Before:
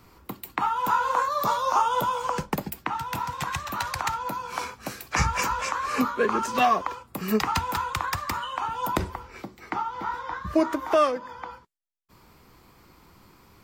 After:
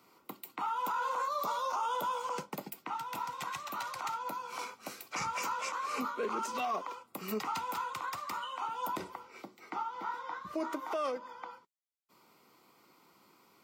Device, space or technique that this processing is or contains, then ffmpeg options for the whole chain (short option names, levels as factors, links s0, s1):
PA system with an anti-feedback notch: -af "highpass=190,highpass=f=210:p=1,asuperstop=centerf=1700:order=4:qfactor=6.7,alimiter=limit=0.106:level=0:latency=1:release=11,volume=0.447"